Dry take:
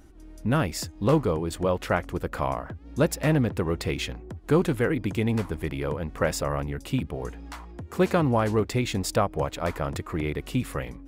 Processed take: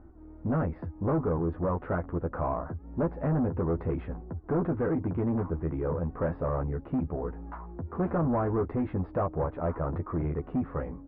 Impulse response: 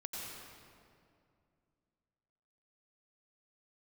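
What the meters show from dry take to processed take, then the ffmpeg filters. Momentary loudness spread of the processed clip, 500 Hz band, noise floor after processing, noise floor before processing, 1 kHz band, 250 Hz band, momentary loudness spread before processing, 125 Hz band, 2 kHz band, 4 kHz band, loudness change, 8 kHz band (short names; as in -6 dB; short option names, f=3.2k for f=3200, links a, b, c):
7 LU, -4.5 dB, -48 dBFS, -46 dBFS, -4.5 dB, -3.0 dB, 11 LU, -3.0 dB, -12.0 dB, under -30 dB, -4.0 dB, under -40 dB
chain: -filter_complex "[0:a]asplit=2[a][b];[b]adelay=12,volume=-4.5dB[c];[a][c]amix=inputs=2:normalize=0,aresample=11025,asoftclip=type=tanh:threshold=-23dB,aresample=44100,lowpass=f=1.3k:w=0.5412,lowpass=f=1.3k:w=1.3066"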